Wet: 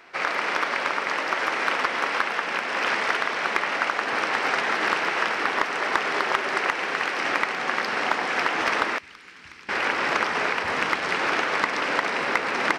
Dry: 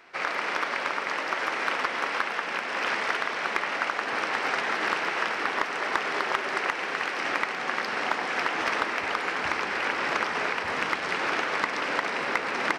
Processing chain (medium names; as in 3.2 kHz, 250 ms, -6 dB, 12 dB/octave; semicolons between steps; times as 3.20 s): 8.98–9.69 s: amplifier tone stack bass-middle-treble 6-0-2; trim +3.5 dB